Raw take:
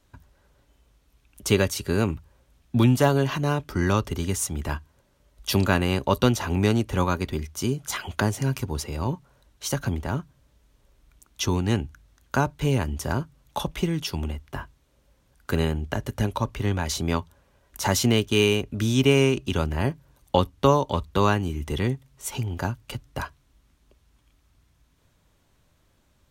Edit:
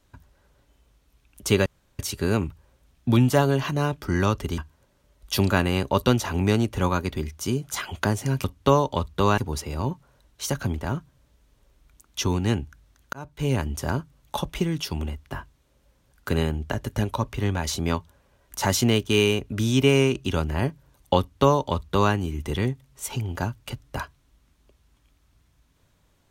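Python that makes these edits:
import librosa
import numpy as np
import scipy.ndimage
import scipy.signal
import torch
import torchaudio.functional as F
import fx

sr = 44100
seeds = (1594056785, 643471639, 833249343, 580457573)

y = fx.edit(x, sr, fx.insert_room_tone(at_s=1.66, length_s=0.33),
    fx.cut(start_s=4.25, length_s=0.49),
    fx.fade_in_span(start_s=12.35, length_s=0.42),
    fx.duplicate(start_s=20.41, length_s=0.94, to_s=8.6), tone=tone)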